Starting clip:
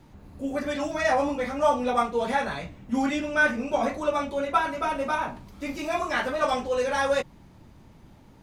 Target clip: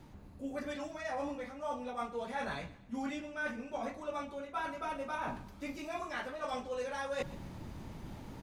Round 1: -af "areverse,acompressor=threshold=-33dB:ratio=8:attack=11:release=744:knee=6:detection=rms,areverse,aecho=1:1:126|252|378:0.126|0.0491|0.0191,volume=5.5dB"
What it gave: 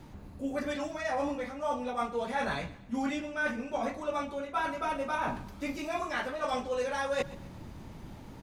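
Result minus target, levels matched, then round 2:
downward compressor: peak gain reduction −6 dB
-af "areverse,acompressor=threshold=-40dB:ratio=8:attack=11:release=744:knee=6:detection=rms,areverse,aecho=1:1:126|252|378:0.126|0.0491|0.0191,volume=5.5dB"

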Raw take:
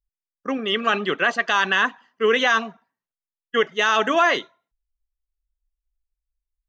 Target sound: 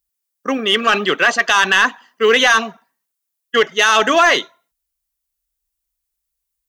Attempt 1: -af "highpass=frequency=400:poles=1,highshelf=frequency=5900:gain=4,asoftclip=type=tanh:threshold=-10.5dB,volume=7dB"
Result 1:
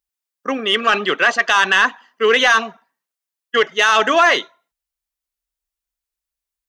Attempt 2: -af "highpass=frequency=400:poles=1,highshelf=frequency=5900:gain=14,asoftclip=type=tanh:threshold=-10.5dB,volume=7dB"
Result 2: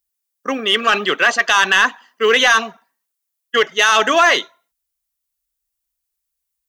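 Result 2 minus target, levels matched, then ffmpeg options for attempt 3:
250 Hz band −3.0 dB
-af "highpass=frequency=180:poles=1,highshelf=frequency=5900:gain=14,asoftclip=type=tanh:threshold=-10.5dB,volume=7dB"

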